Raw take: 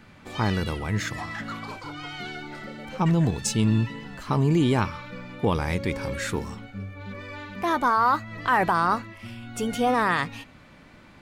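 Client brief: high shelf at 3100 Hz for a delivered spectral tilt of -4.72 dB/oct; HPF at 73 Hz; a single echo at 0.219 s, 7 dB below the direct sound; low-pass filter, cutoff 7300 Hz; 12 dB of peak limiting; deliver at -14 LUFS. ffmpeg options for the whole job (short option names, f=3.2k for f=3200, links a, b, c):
-af "highpass=73,lowpass=7.3k,highshelf=f=3.1k:g=7,alimiter=limit=-20dB:level=0:latency=1,aecho=1:1:219:0.447,volume=16.5dB"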